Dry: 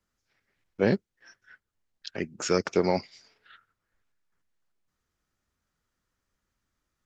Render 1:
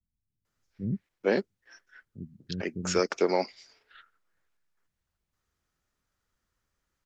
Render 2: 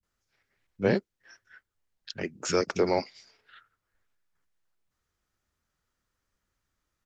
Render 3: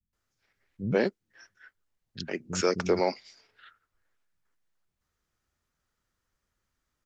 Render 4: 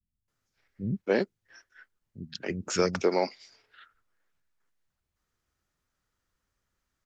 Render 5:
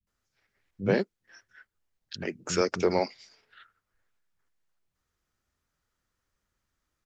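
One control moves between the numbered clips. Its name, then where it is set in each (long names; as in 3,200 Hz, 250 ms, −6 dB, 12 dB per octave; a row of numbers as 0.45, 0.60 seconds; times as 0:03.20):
multiband delay without the direct sound, delay time: 450, 30, 130, 280, 70 milliseconds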